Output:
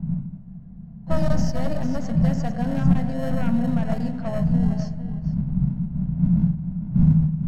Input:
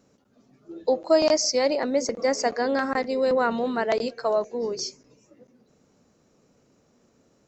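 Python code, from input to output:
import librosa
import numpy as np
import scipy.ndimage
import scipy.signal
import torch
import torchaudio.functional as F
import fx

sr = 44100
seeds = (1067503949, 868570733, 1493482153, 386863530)

p1 = np.minimum(x, 2.0 * 10.0 ** (-18.0 / 20.0) - x)
p2 = fx.dmg_wind(p1, sr, seeds[0], corner_hz=190.0, level_db=-36.0)
p3 = fx.peak_eq(p2, sr, hz=83.0, db=-7.0, octaves=0.77)
p4 = p3 + fx.echo_single(p3, sr, ms=451, db=-10.5, dry=0)
p5 = fx.rev_spring(p4, sr, rt60_s=1.9, pass_ms=(38, 51, 55), chirp_ms=50, drr_db=9.5)
p6 = fx.sample_hold(p5, sr, seeds[1], rate_hz=1200.0, jitter_pct=0)
p7 = p5 + F.gain(torch.from_numpy(p6), -5.5).numpy()
p8 = fx.env_lowpass(p7, sr, base_hz=2400.0, full_db=-17.5)
p9 = fx.curve_eq(p8, sr, hz=(110.0, 170.0, 400.0, 660.0, 3400.0), db=(0, 13, -26, -10, -21))
p10 = fx.spec_freeze(p9, sr, seeds[2], at_s=0.46, hold_s=0.61)
y = F.gain(torch.from_numpy(p10), 5.0).numpy()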